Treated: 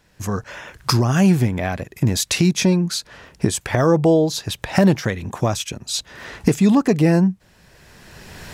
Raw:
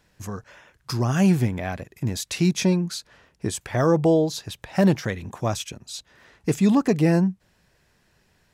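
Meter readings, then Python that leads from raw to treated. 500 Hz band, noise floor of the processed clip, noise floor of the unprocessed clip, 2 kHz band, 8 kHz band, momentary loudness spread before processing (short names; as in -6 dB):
+4.0 dB, -55 dBFS, -65 dBFS, +6.0 dB, +7.5 dB, 17 LU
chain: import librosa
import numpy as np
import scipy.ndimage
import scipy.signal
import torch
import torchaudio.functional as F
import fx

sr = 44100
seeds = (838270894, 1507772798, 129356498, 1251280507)

y = fx.recorder_agc(x, sr, target_db=-12.0, rise_db_per_s=18.0, max_gain_db=30)
y = y * librosa.db_to_amplitude(3.5)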